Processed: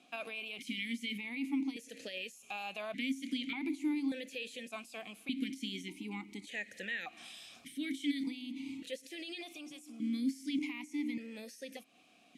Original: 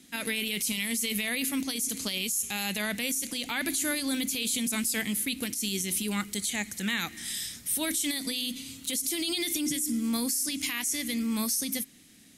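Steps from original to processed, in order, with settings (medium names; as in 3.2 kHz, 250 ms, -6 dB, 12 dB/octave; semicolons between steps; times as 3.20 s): compression 5:1, threshold -36 dBFS, peak gain reduction 10 dB; stepped vowel filter 1.7 Hz; trim +11.5 dB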